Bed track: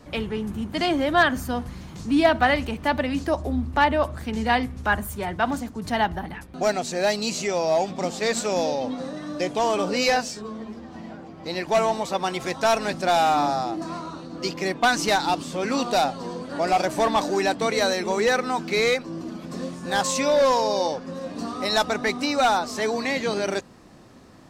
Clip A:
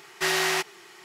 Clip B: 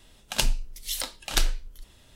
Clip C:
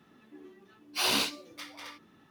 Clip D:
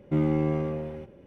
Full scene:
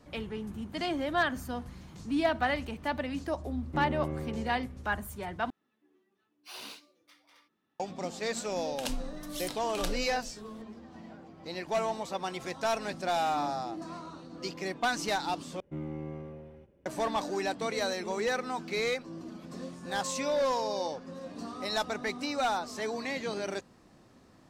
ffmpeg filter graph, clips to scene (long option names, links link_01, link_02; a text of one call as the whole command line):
ffmpeg -i bed.wav -i cue0.wav -i cue1.wav -i cue2.wav -i cue3.wav -filter_complex "[4:a]asplit=2[link_01][link_02];[0:a]volume=-9.5dB[link_03];[3:a]lowshelf=frequency=160:gain=-8.5[link_04];[2:a]acompressor=threshold=-37dB:ratio=1.5:attack=4:release=114:knee=1:detection=peak[link_05];[link_02]equalizer=frequency=63:width=2.4:gain=8[link_06];[link_03]asplit=3[link_07][link_08][link_09];[link_07]atrim=end=5.504[link_10];[link_04]atrim=end=2.3,asetpts=PTS-STARTPTS,volume=-17dB[link_11];[link_08]atrim=start=7.796:end=15.604[link_12];[link_06]atrim=end=1.26,asetpts=PTS-STARTPTS,volume=-14dB[link_13];[link_09]atrim=start=16.856[link_14];[link_01]atrim=end=1.26,asetpts=PTS-STARTPTS,volume=-10dB,afade=type=in:duration=0.004:curve=hsin,afade=type=out:start_time=1.256:duration=0.004:curve=hsin,adelay=3620[link_15];[link_05]atrim=end=2.15,asetpts=PTS-STARTPTS,volume=-5.5dB,afade=type=in:duration=0.004:curve=hsin,afade=type=out:start_time=2.146:duration=0.004:curve=hsin,adelay=8470[link_16];[link_10][link_11]acrossfade=duration=0.004:curve1=hsin:curve2=hsin[link_17];[link_17][link_12]acrossfade=duration=0.004:curve1=hsin:curve2=hsin[link_18];[link_18][link_13]acrossfade=duration=0.004:curve1=hsin:curve2=hsin[link_19];[link_19][link_14]acrossfade=duration=0.004:curve1=hsin:curve2=hsin[link_20];[link_20][link_15][link_16]amix=inputs=3:normalize=0" out.wav